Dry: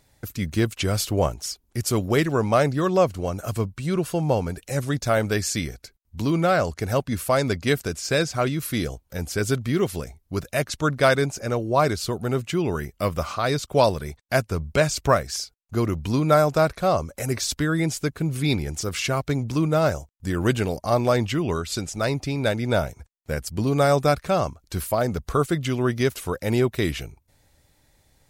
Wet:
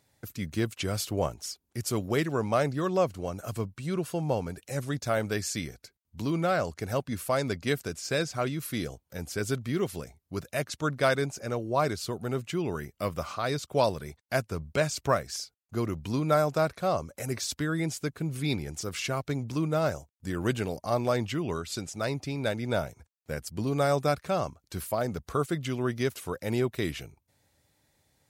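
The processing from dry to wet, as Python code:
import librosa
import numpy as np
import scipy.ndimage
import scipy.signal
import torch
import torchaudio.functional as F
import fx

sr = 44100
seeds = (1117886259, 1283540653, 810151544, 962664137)

y = scipy.signal.sosfilt(scipy.signal.butter(2, 86.0, 'highpass', fs=sr, output='sos'), x)
y = y * 10.0 ** (-6.5 / 20.0)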